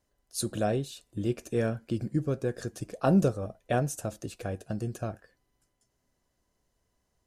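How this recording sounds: noise floor -78 dBFS; spectral tilt -6.0 dB/oct

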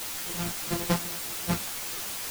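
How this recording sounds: a buzz of ramps at a fixed pitch in blocks of 256 samples; tremolo triangle 4.8 Hz, depth 90%; a quantiser's noise floor 6-bit, dither triangular; a shimmering, thickened sound

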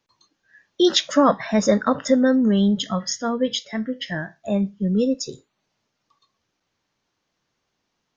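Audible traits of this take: noise floor -77 dBFS; spectral tilt -5.0 dB/oct

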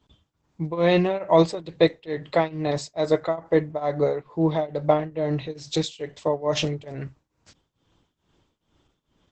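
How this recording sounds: tremolo triangle 2.3 Hz, depth 95%; Opus

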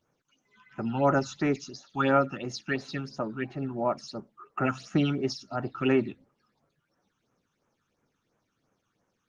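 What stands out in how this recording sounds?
phasing stages 8, 2.9 Hz, lowest notch 570–4500 Hz; Opus

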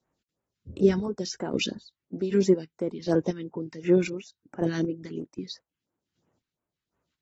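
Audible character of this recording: phasing stages 2, 2.9 Hz, lowest notch 560–4500 Hz; chopped level 1.3 Hz, depth 65%, duty 30%; AAC

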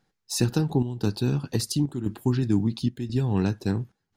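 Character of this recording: chopped level 0.97 Hz, depth 65%, duty 80%

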